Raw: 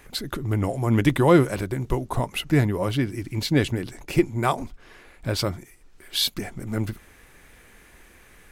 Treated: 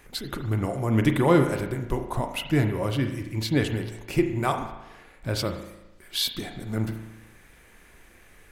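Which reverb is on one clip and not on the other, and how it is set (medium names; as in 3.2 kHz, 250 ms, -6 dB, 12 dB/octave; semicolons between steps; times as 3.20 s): spring tank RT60 1 s, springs 36 ms, chirp 60 ms, DRR 6 dB; trim -3 dB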